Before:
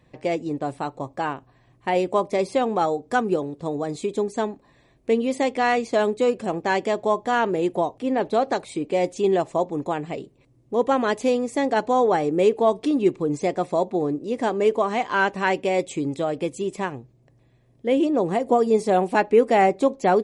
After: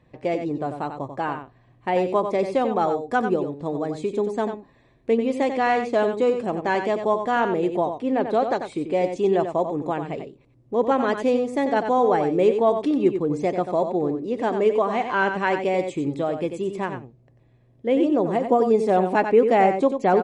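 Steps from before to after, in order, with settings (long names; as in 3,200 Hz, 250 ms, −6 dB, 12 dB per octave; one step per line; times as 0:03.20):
high-shelf EQ 4,400 Hz −11.5 dB
single-tap delay 92 ms −8 dB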